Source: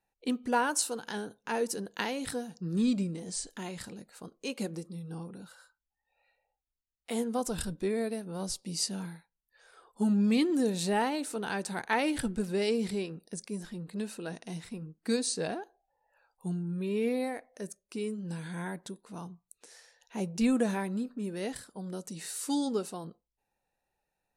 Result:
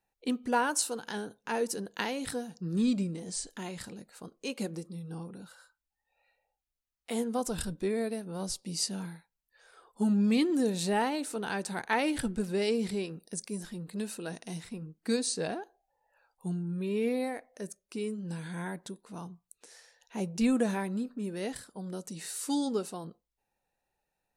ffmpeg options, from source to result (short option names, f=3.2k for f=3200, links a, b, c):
-filter_complex "[0:a]asettb=1/sr,asplit=3[a][b][c];[a]atrim=end=13.034[d];[b]atrim=start=13.03:end=14.63,asetpts=PTS-STARTPTS,afade=t=in:d=0.004:c=qsin,afade=t=out:st=1.596:d=0.004:c=qsin,highshelf=f=6.4k:g=7[e];[c]atrim=start=14.626[f];[d][e]acrossfade=d=0.004:c1=hsin:c2=qsin[g];[g][f]acrossfade=d=0.004:c1=qsin:c2=hsin"